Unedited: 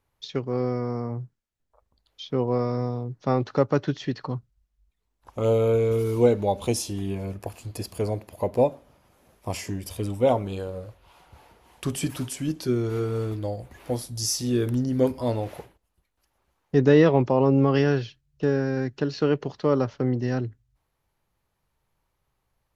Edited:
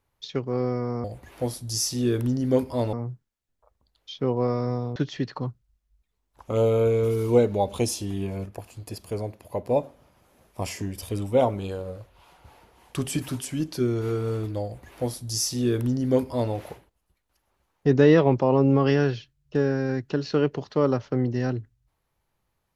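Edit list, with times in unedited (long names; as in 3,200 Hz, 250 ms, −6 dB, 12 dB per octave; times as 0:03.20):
0:03.07–0:03.84: remove
0:07.34–0:08.64: clip gain −3.5 dB
0:13.52–0:15.41: duplicate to 0:01.04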